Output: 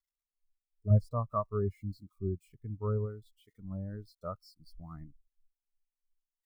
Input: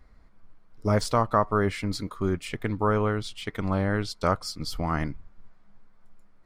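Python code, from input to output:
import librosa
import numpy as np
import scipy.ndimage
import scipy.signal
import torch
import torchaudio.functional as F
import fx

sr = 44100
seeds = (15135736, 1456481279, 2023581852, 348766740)

y = x + 0.5 * 10.0 ** (-19.5 / 20.0) * np.diff(np.sign(x), prepend=np.sign(x[:1]))
y = fx.peak_eq(y, sr, hz=62.0, db=4.5, octaves=2.9, at=(0.9, 3.06))
y = fx.spectral_expand(y, sr, expansion=2.5)
y = y * librosa.db_to_amplitude(-6.5)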